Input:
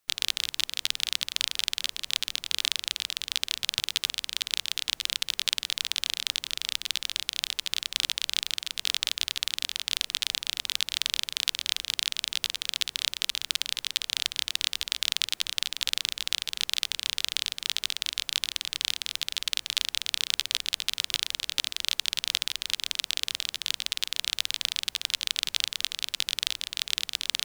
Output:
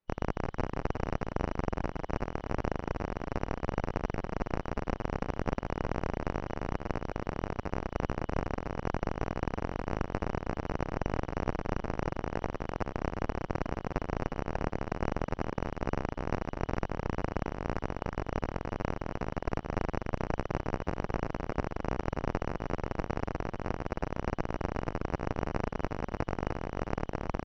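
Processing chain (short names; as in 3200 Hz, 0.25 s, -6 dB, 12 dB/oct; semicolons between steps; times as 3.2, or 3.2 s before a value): four-band scrambler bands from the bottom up 3412; tilt -3 dB/oct; soft clip -4.5 dBFS, distortion -24 dB; air absorption 230 m; on a send: feedback echo 0.363 s, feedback 15%, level -7 dB; on the sum: gain -5 dB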